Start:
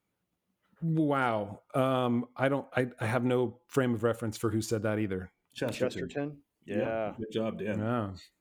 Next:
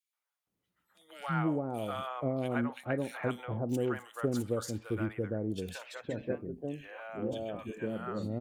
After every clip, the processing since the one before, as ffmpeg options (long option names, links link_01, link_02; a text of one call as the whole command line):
ffmpeg -i in.wav -filter_complex "[0:a]acrossover=split=750|2500[link_01][link_02][link_03];[link_02]adelay=130[link_04];[link_01]adelay=470[link_05];[link_05][link_04][link_03]amix=inputs=3:normalize=0,volume=-3dB" out.wav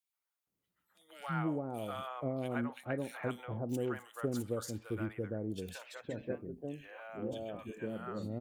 ffmpeg -i in.wav -af "highshelf=frequency=11000:gain=6,volume=-4dB" out.wav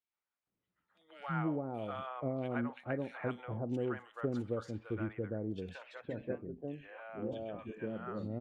ffmpeg -i in.wav -af "lowpass=2800" out.wav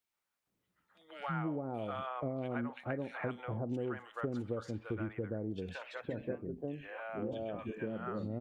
ffmpeg -i in.wav -af "acompressor=threshold=-42dB:ratio=2.5,volume=5.5dB" out.wav